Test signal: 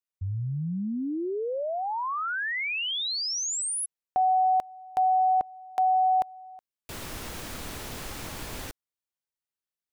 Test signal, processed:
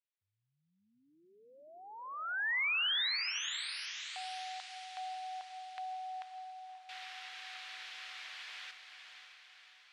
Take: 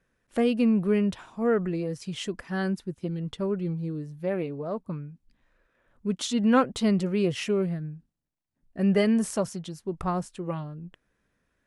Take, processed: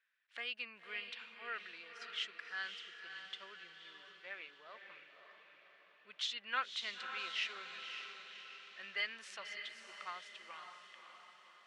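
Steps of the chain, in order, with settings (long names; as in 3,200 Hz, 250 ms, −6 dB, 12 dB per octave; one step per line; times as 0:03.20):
flat-topped band-pass 2,600 Hz, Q 1
on a send: feedback delay with all-pass diffusion 559 ms, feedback 54%, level −7 dB
on the sum: level −2.5 dB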